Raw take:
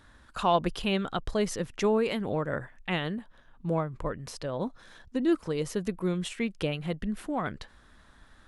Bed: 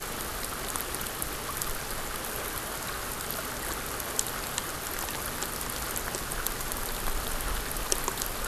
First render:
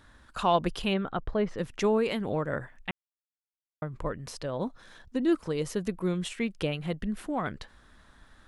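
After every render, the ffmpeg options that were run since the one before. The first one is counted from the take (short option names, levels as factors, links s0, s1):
-filter_complex "[0:a]asplit=3[s0][s1][s2];[s0]afade=t=out:st=0.93:d=0.02[s3];[s1]lowpass=2000,afade=t=in:st=0.93:d=0.02,afade=t=out:st=1.57:d=0.02[s4];[s2]afade=t=in:st=1.57:d=0.02[s5];[s3][s4][s5]amix=inputs=3:normalize=0,asplit=3[s6][s7][s8];[s6]atrim=end=2.91,asetpts=PTS-STARTPTS,afade=t=out:st=2.906:d=0.004:c=hsin[s9];[s7]atrim=start=2.91:end=3.82,asetpts=PTS-STARTPTS,volume=0[s10];[s8]atrim=start=3.82,asetpts=PTS-STARTPTS,afade=t=in:d=0.004:c=hsin[s11];[s9][s10][s11]concat=n=3:v=0:a=1"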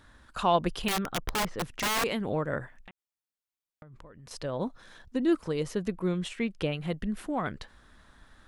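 -filter_complex "[0:a]asettb=1/sr,asplit=3[s0][s1][s2];[s0]atrim=end=0.884[s3];[s1]atrim=start=0.88:end=2.04,asetpts=PTS-STARTPTS,afade=t=in:d=0.004:c=qsin,afade=t=out:st=1.156:d=0.004:c=qsin,aeval=exprs='(mod(14.1*val(0)+1,2)-1)/14.1':c=same[s4];[s2]atrim=start=2.036[s5];[s3][s4]acrossfade=d=0.004:c1=hsin:c2=qsin[s6];[s6][s5]acrossfade=d=0.004:c1=qsin:c2=hsin,asettb=1/sr,asplit=3[s7][s8][s9];[s7]atrim=end=2.764[s10];[s8]atrim=start=2.76:end=4.31,asetpts=PTS-STARTPTS,afade=t=in:d=0.004:c=qsin,afade=t=out:st=1.546:d=0.004:c=qsin,acompressor=threshold=0.00501:ratio=12:attack=3.2:release=140:knee=1:detection=peak[s11];[s9]atrim=start=4.306[s12];[s10][s11]acrossfade=d=0.004:c1=hsin:c2=qsin[s13];[s13][s12]acrossfade=d=0.004:c1=qsin:c2=hsin,asettb=1/sr,asplit=3[s14][s15][s16];[s14]atrim=end=5.634[s17];[s15]atrim=start=5.63:end=6.77,asetpts=PTS-STARTPTS,afade=t=in:d=0.004:c=qsin,afade=t=out:st=1.136:d=0.004:c=qsin,highshelf=f=7200:g=-7.5[s18];[s16]atrim=start=6.766[s19];[s17][s18]acrossfade=d=0.004:c1=hsin:c2=qsin[s20];[s20][s19]acrossfade=d=0.004:c1=qsin:c2=hsin"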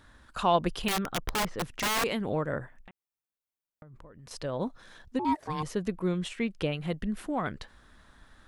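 -filter_complex "[0:a]asettb=1/sr,asplit=3[s0][s1][s2];[s0]atrim=end=2.524[s3];[s1]atrim=start=2.52:end=4.19,asetpts=PTS-STARTPTS,afade=t=in:d=0.004:c=qsin,afade=t=out:st=1.666:d=0.004:c=qsin,equalizer=f=4400:w=0.43:g=-6[s4];[s2]atrim=start=4.186[s5];[s3][s4]acrossfade=d=0.004:c1=hsin:c2=qsin[s6];[s6][s5]acrossfade=d=0.004:c1=qsin:c2=hsin,asettb=1/sr,asplit=3[s7][s8][s9];[s7]atrim=end=5.194[s10];[s8]atrim=start=5.19:end=5.63,asetpts=PTS-STARTPTS,afade=t=in:d=0.004:c=qsin,afade=t=out:st=0.436:d=0.004:c=qsin,aeval=exprs='val(0)*sin(2*PI*610*n/s)':c=same[s11];[s9]atrim=start=5.626[s12];[s10][s11]acrossfade=d=0.004:c1=hsin:c2=qsin[s13];[s13][s12]acrossfade=d=0.004:c1=qsin:c2=hsin"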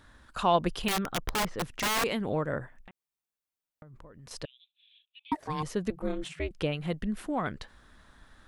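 -filter_complex "[0:a]asettb=1/sr,asplit=3[s0][s1][s2];[s0]atrim=end=4.454[s3];[s1]atrim=start=4.45:end=5.32,asetpts=PTS-STARTPTS,afade=t=in:d=0.004:c=qsin,afade=t=out:st=0.866:d=0.004:c=qsin,asuperpass=centerf=3000:order=8:qfactor=2.4[s4];[s2]atrim=start=5.316[s5];[s3][s4]acrossfade=d=0.004:c1=hsin:c2=qsin[s6];[s6][s5]acrossfade=d=0.004:c1=qsin:c2=hsin,asettb=1/sr,asplit=3[s7][s8][s9];[s7]atrim=end=5.904[s10];[s8]atrim=start=5.9:end=6.51,asetpts=PTS-STARTPTS,afade=t=in:d=0.004:c=qsin,afade=t=out:st=0.606:d=0.004:c=qsin,aeval=exprs='val(0)*sin(2*PI*160*n/s)':c=same[s11];[s9]atrim=start=6.506[s12];[s10][s11]acrossfade=d=0.004:c1=hsin:c2=qsin[s13];[s13][s12]acrossfade=d=0.004:c1=qsin:c2=hsin"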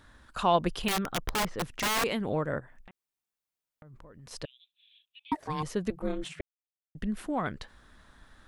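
-filter_complex "[0:a]asplit=3[s0][s1][s2];[s0]afade=t=out:st=2.59:d=0.02[s3];[s1]acompressor=threshold=0.00562:ratio=6:attack=3.2:release=140:knee=1:detection=peak,afade=t=in:st=2.59:d=0.02,afade=t=out:st=4.31:d=0.02[s4];[s2]afade=t=in:st=4.31:d=0.02[s5];[s3][s4][s5]amix=inputs=3:normalize=0,asplit=3[s6][s7][s8];[s6]atrim=end=6.41,asetpts=PTS-STARTPTS,afade=t=out:st=6.406:d=0.004:c=hsin[s9];[s7]atrim=start=6.41:end=6.95,asetpts=PTS-STARTPTS,volume=0[s10];[s8]atrim=start=6.95,asetpts=PTS-STARTPTS,afade=t=in:d=0.004:c=hsin[s11];[s9][s10][s11]concat=n=3:v=0:a=1"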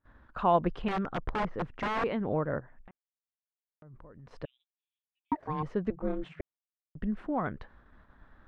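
-af "lowpass=1600,agate=range=0.0631:threshold=0.00141:ratio=16:detection=peak"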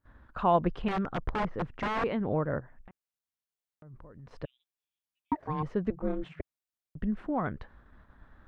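-af "equalizer=f=73:w=0.5:g=3.5"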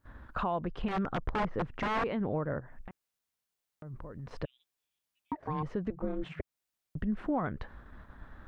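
-filter_complex "[0:a]asplit=2[s0][s1];[s1]acompressor=threshold=0.0158:ratio=6,volume=1[s2];[s0][s2]amix=inputs=2:normalize=0,alimiter=limit=0.0668:level=0:latency=1:release=211"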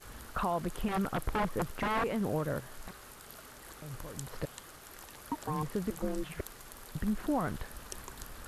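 -filter_complex "[1:a]volume=0.15[s0];[0:a][s0]amix=inputs=2:normalize=0"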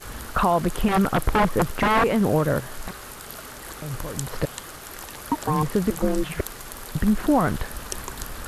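-af "volume=3.98"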